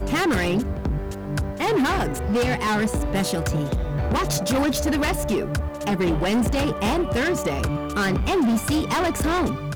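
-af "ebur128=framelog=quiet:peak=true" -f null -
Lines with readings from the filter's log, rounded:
Integrated loudness:
  I:         -23.0 LUFS
  Threshold: -33.0 LUFS
Loudness range:
  LRA:         1.2 LU
  Threshold: -43.1 LUFS
  LRA low:   -23.7 LUFS
  LRA high:  -22.4 LUFS
True peak:
  Peak:      -15.8 dBFS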